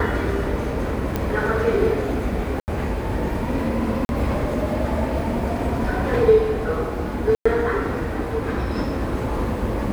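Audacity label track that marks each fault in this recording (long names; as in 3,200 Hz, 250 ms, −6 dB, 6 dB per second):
1.160000	1.160000	click −10 dBFS
2.600000	2.680000	drop-out 79 ms
4.050000	4.090000	drop-out 41 ms
7.350000	7.460000	drop-out 105 ms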